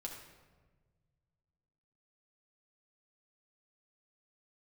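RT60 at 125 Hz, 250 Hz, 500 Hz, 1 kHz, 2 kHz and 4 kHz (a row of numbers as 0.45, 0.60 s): 2.8, 1.9, 1.6, 1.2, 1.1, 0.85 s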